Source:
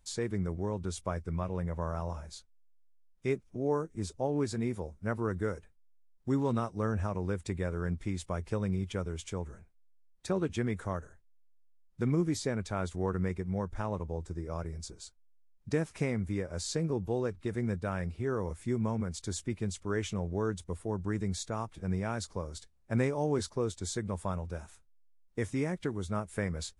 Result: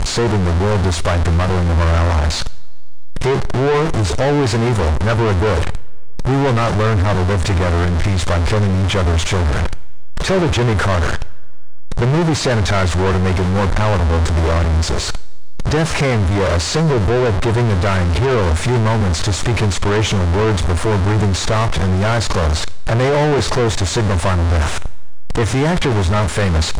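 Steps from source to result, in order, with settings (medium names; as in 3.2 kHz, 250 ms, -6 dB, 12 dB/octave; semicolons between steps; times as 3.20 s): jump at every zero crossing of -35.5 dBFS; fifteen-band graphic EQ 250 Hz -12 dB, 2.5 kHz -3 dB, 10 kHz +8 dB; waveshaping leveller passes 5; distance through air 120 m; two-slope reverb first 0.68 s, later 3.1 s, from -19 dB, DRR 17 dB; trim +9 dB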